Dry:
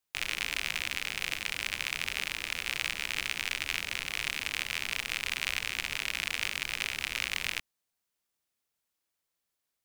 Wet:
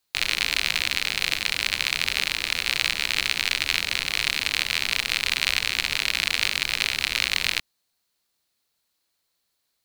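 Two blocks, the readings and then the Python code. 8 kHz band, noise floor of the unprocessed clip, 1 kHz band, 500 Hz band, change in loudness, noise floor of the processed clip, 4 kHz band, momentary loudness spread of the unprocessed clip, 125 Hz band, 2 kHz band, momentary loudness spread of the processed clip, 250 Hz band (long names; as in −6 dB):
+8.0 dB, −84 dBFS, +7.5 dB, +7.5 dB, +9.0 dB, −76 dBFS, +11.0 dB, 2 LU, +7.5 dB, +8.0 dB, 2 LU, +7.5 dB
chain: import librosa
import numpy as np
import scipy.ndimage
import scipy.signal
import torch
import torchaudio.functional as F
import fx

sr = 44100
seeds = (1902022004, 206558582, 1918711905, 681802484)

y = fx.peak_eq(x, sr, hz=4200.0, db=9.5, octaves=0.32)
y = F.gain(torch.from_numpy(y), 7.5).numpy()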